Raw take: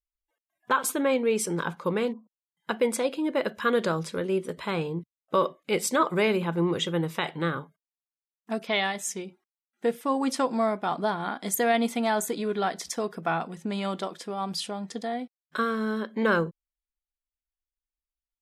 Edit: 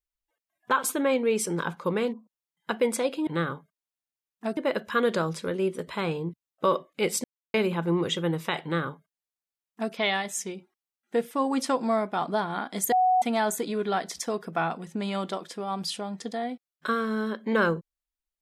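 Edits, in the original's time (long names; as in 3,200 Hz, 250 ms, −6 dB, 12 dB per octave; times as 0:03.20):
0:05.94–0:06.24: silence
0:07.33–0:08.63: duplicate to 0:03.27
0:11.62–0:11.92: beep over 740 Hz −18 dBFS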